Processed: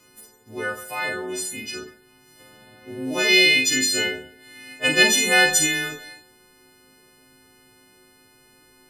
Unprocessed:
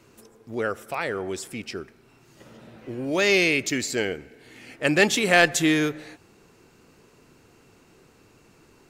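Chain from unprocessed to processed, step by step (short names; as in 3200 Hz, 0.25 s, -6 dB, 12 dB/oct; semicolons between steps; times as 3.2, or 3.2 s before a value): frequency quantiser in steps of 3 st; 3.28–5.03 dynamic EQ 3500 Hz, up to +7 dB, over -32 dBFS, Q 1.5; Schroeder reverb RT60 0.37 s, combs from 27 ms, DRR 1.5 dB; gain -4 dB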